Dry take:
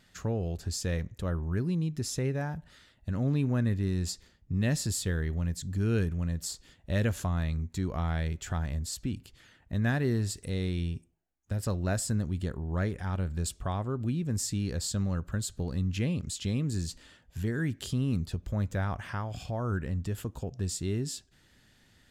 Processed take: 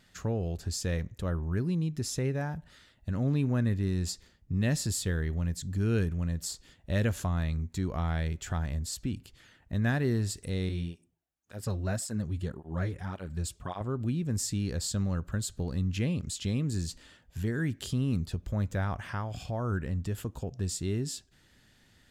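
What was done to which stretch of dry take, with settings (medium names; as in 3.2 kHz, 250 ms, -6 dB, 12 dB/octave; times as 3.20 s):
10.69–13.81 s: cancelling through-zero flanger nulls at 1.8 Hz, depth 5.5 ms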